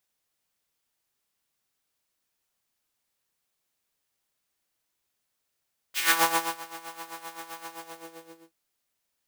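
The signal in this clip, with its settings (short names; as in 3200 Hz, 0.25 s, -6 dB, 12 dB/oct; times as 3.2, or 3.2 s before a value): synth patch with tremolo E4, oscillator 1 triangle, interval 0 st, oscillator 2 level -9.5 dB, sub -2.5 dB, noise -8.5 dB, filter highpass, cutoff 380 Hz, Q 1.9, filter envelope 3 oct, attack 0.1 s, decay 0.54 s, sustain -22 dB, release 0.89 s, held 1.69 s, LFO 7.7 Hz, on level 12 dB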